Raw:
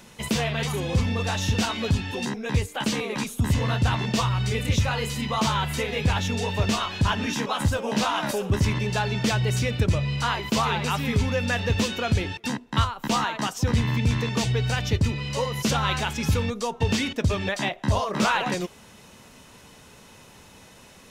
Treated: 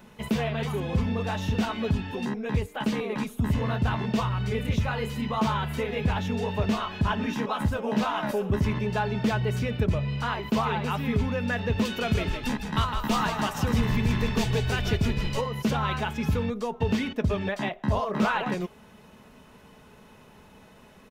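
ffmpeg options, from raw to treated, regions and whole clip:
-filter_complex "[0:a]asettb=1/sr,asplit=3[a][b][c];[a]atrim=end=11.854[d];[b]atrim=start=11.85:end=15.41,asetpts=PTS-STARTPTS,afade=t=in:d=0.004:c=qsin,afade=t=out:st=3.556:d=0.004:c=qsin,highshelf=f=3.1k:g=9,asplit=7[e][f][g][h][i][j][k];[f]adelay=158,afreqshift=-48,volume=-7dB[l];[g]adelay=316,afreqshift=-96,volume=-12.7dB[m];[h]adelay=474,afreqshift=-144,volume=-18.4dB[n];[i]adelay=632,afreqshift=-192,volume=-24dB[o];[j]adelay=790,afreqshift=-240,volume=-29.7dB[p];[k]adelay=948,afreqshift=-288,volume=-35.4dB[q];[e][l][m][n][o][p][q]amix=inputs=7:normalize=0,atrim=end_sample=156996[r];[c]atrim=start=15.406[s];[d][r]acrossfade=d=0.004:c1=hsin:c2=qsin[t];[t][s]acrossfade=d=0.004:c1=qsin:c2=hsin,aecho=1:1:4.7:0.31,acontrast=56,equalizer=f=7.1k:w=0.49:g=-13,volume=-7.5dB"

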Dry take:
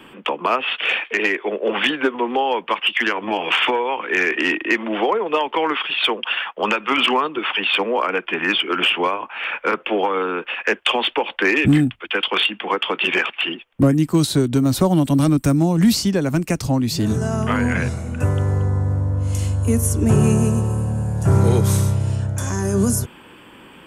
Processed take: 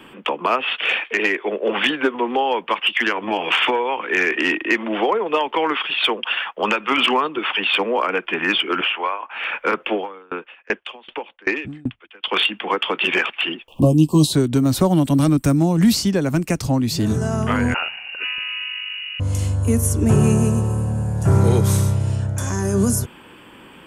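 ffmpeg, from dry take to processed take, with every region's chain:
-filter_complex "[0:a]asettb=1/sr,asplit=3[a][b][c];[a]atrim=end=8.814[d];[b]atrim=start=8.81:end=9.31,asetpts=PTS-STARTPTS,afade=t=in:d=0.004:c=qsin,afade=t=out:st=0.496:d=0.004:c=qsin,highpass=790,lowpass=3.7k,aemphasis=mode=reproduction:type=bsi[e];[c]atrim=start=9.306[f];[d][e]acrossfade=d=0.004:c1=hsin:c2=qsin[g];[g][f]acrossfade=d=0.004:c1=qsin:c2=hsin,asettb=1/sr,asplit=3[h][i][j];[h]atrim=end=9.934[k];[i]atrim=start=9.93:end=12.28,asetpts=PTS-STARTPTS,afade=t=in:d=0.004:c=qsin,afade=t=out:st=2.346:d=0.004:c=qsin,lowpass=5.2k,aeval=exprs='val(0)*pow(10,-31*if(lt(mod(2.6*n/s,1),2*abs(2.6)/1000),1-mod(2.6*n/s,1)/(2*abs(2.6)/1000),(mod(2.6*n/s,1)-2*abs(2.6)/1000)/(1-2*abs(2.6)/1000))/20)':c=same[l];[j]atrim=start=12.276[m];[k][l]acrossfade=d=0.004:c1=hsin:c2=qsin[n];[n][m]acrossfade=d=0.004:c1=qsin:c2=hsin,asettb=1/sr,asplit=3[o][p][q];[o]atrim=end=13.684[r];[p]atrim=start=13.68:end=14.33,asetpts=PTS-STARTPTS,afade=t=in:d=0.004:c=qsin,afade=t=out:st=0.646:d=0.004:c=qsin,acompressor=mode=upward:threshold=-27dB:ratio=2.5:attack=3.2:release=140:knee=2.83:detection=peak,asuperstop=centerf=1700:order=20:qfactor=1.2,asplit=2[s][t];[t]adelay=13,volume=-5dB[u];[s][u]amix=inputs=2:normalize=0,atrim=end_sample=28665[v];[q]atrim=start=14.326[w];[r][v]acrossfade=d=0.004:c1=hsin:c2=qsin[x];[x][w]acrossfade=d=0.004:c1=qsin:c2=hsin,asettb=1/sr,asplit=3[y][z][aa];[y]atrim=end=17.744[ab];[z]atrim=start=17.74:end=19.2,asetpts=PTS-STARTPTS,afade=t=in:d=0.004:c=qsin,afade=t=out:st=1.456:d=0.004:c=qsin,highpass=210,lowpass=f=2.6k:t=q:w=0.5098,lowpass=f=2.6k:t=q:w=0.6013,lowpass=f=2.6k:t=q:w=0.9,lowpass=f=2.6k:t=q:w=2.563,afreqshift=-3000[ac];[aa]atrim=start=19.196[ad];[ab][ac]acrossfade=d=0.004:c1=hsin:c2=qsin[ae];[ae][ad]acrossfade=d=0.004:c1=qsin:c2=hsin"

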